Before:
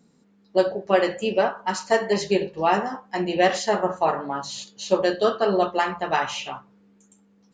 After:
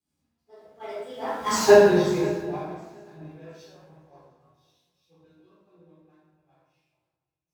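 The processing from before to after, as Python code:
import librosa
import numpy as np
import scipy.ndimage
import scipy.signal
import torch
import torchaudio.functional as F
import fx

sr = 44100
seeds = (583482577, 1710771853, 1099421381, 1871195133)

p1 = x + 0.5 * 10.0 ** (-30.5 / 20.0) * np.sign(x)
p2 = fx.doppler_pass(p1, sr, speed_mps=48, closest_m=4.4, pass_at_s=1.59)
p3 = fx.chorus_voices(p2, sr, voices=2, hz=0.36, base_ms=13, depth_ms=1.6, mix_pct=40)
p4 = fx.dynamic_eq(p3, sr, hz=680.0, q=0.8, threshold_db=-48.0, ratio=4.0, max_db=3)
p5 = fx.level_steps(p4, sr, step_db=19)
p6 = p4 + (p5 * librosa.db_to_amplitude(0.5))
p7 = scipy.signal.sosfilt(scipy.signal.butter(2, 61.0, 'highpass', fs=sr, output='sos'), p6)
p8 = fx.low_shelf(p7, sr, hz=210.0, db=8.5)
p9 = fx.doubler(p8, sr, ms=20.0, db=-10.5)
p10 = p9 + fx.echo_swing(p9, sr, ms=718, ratio=3, feedback_pct=31, wet_db=-16, dry=0)
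p11 = fx.room_shoebox(p10, sr, seeds[0], volume_m3=710.0, walls='mixed', distance_m=3.9)
p12 = fx.band_widen(p11, sr, depth_pct=70)
y = p12 * librosa.db_to_amplitude(-10.0)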